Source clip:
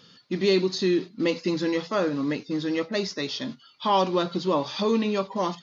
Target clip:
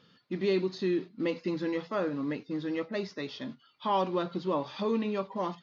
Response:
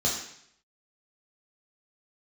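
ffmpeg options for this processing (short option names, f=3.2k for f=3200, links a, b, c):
-af "bass=f=250:g=0,treble=f=4k:g=-13,volume=-6dB"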